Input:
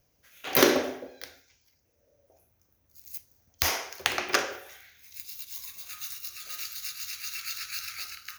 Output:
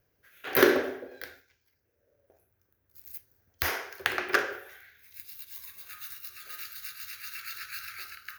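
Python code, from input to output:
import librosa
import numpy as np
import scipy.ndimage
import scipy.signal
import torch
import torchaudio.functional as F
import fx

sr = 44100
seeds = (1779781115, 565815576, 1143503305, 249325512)

y = fx.graphic_eq_15(x, sr, hz=(100, 400, 1600, 6300, 16000), db=(5, 8, 10, -7, 4))
y = fx.leveller(y, sr, passes=1, at=(1.11, 3.12))
y = y * 10.0 ** (-5.5 / 20.0)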